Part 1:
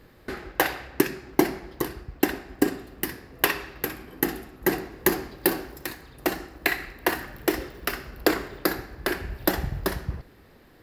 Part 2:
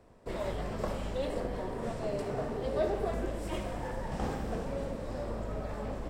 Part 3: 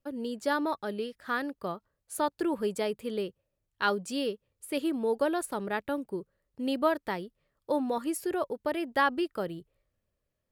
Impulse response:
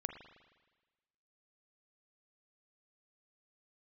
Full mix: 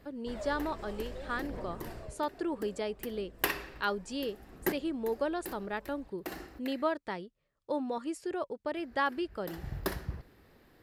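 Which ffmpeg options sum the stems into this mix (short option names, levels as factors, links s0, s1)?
-filter_complex "[0:a]volume=0.447,asplit=3[s0][s1][s2];[s0]atrim=end=6.97,asetpts=PTS-STARTPTS,afade=t=out:st=6.966:d=0.004:c=hsin[s3];[s1]atrim=start=6.97:end=8.76,asetpts=PTS-STARTPTS,volume=0[s4];[s2]atrim=start=8.76,asetpts=PTS-STARTPTS,afade=t=in:d=0.004:c=hsin[s5];[s3][s4][s5]concat=n=3:v=0:a=1[s6];[1:a]alimiter=level_in=1.26:limit=0.0631:level=0:latency=1:release=89,volume=0.794,aphaser=in_gain=1:out_gain=1:delay=3:decay=0.5:speed=0.63:type=triangular,volume=0.355,afade=t=out:st=1.87:d=0.33:silence=0.251189[s7];[2:a]lowpass=f=8400:w=0.5412,lowpass=f=8400:w=1.3066,volume=0.596,asplit=2[s8][s9];[s9]apad=whole_len=477475[s10];[s6][s10]sidechaincompress=threshold=0.00251:ratio=6:attack=6.9:release=171[s11];[s11][s7][s8]amix=inputs=3:normalize=0"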